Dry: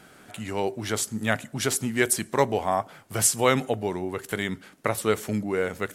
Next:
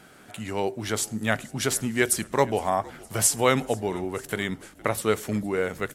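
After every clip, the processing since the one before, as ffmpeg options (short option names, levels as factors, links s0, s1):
-filter_complex "[0:a]asplit=5[s0][s1][s2][s3][s4];[s1]adelay=463,afreqshift=-65,volume=0.075[s5];[s2]adelay=926,afreqshift=-130,volume=0.0452[s6];[s3]adelay=1389,afreqshift=-195,volume=0.0269[s7];[s4]adelay=1852,afreqshift=-260,volume=0.0162[s8];[s0][s5][s6][s7][s8]amix=inputs=5:normalize=0"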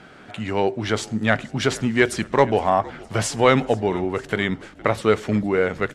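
-filter_complex "[0:a]asplit=2[s0][s1];[s1]asoftclip=type=hard:threshold=0.133,volume=0.473[s2];[s0][s2]amix=inputs=2:normalize=0,lowpass=4000,volume=1.41"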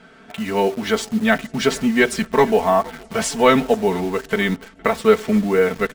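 -filter_complex "[0:a]aecho=1:1:4.5:0.88,asplit=2[s0][s1];[s1]acrusher=bits=4:mix=0:aa=0.000001,volume=0.562[s2];[s0][s2]amix=inputs=2:normalize=0,volume=0.631"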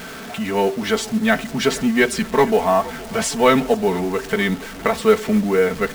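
-af "aeval=exprs='val(0)+0.5*0.0376*sgn(val(0))':c=same,acrusher=bits=7:mode=log:mix=0:aa=0.000001,volume=0.891"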